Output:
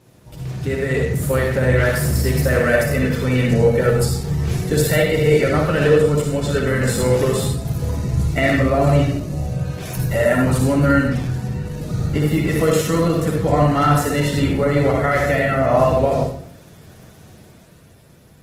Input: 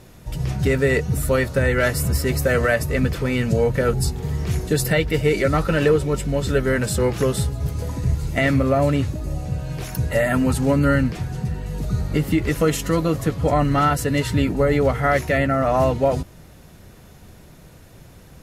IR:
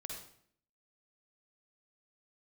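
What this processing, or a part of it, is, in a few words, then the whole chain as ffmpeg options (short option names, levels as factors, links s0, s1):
far-field microphone of a smart speaker: -filter_complex "[0:a]asettb=1/sr,asplit=3[s0][s1][s2];[s0]atrim=end=2.724[s3];[s1]atrim=start=2.72:end=3.36,asetpts=PTS-STARTPTS,afade=t=in:d=0.004:c=qsin,afade=t=out:st=0.636:d=0.004:c=qsin,bandreject=f=182.7:t=h:w=4,bandreject=f=365.4:t=h:w=4,bandreject=f=548.1:t=h:w=4,bandreject=f=730.8:t=h:w=4,bandreject=f=913.5:t=h:w=4,bandreject=f=1096.2:t=h:w=4,bandreject=f=1278.9:t=h:w=4,bandreject=f=1461.6:t=h:w=4,bandreject=f=1644.3:t=h:w=4,bandreject=f=1827:t=h:w=4,bandreject=f=2009.7:t=h:w=4,bandreject=f=2192.4:t=h:w=4,bandreject=f=2375.1:t=h:w=4,bandreject=f=2557.8:t=h:w=4,bandreject=f=2740.5:t=h:w=4,bandreject=f=2923.2:t=h:w=4,bandreject=f=3105.9:t=h:w=4,bandreject=f=3288.6:t=h:w=4,bandreject=f=3471.3:t=h:w=4,bandreject=f=3654:t=h:w=4,bandreject=f=3836.7:t=h:w=4,bandreject=f=4019.4:t=h:w=4,bandreject=f=4202.1:t=h:w=4,bandreject=f=4384.8:t=h:w=4,bandreject=f=4567.5:t=h:w=4,bandreject=f=4750.2:t=h:w=4,bandreject=f=4932.9:t=h:w=4[s4];[s2]atrim=start=3.356[s5];[s3][s4]acrossfade=d=0.004:c1=hsin:c2=qsin[s6];[s6][s5]acrossfade=d=0.004:c1=qsin:c2=hsin[s7];[1:a]atrim=start_sample=2205[s8];[s7][s8]afir=irnorm=-1:irlink=0,highpass=92,dynaudnorm=f=120:g=17:m=2" -ar 48000 -c:a libopus -b:a 16k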